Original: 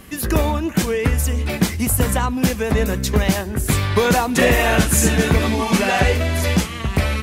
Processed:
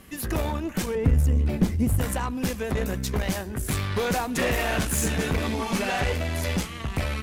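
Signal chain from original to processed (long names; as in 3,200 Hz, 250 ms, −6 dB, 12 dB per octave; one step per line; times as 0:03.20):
tube saturation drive 14 dB, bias 0.55
0:00.95–0:01.99: tilt shelving filter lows +8 dB, about 650 Hz
level −5 dB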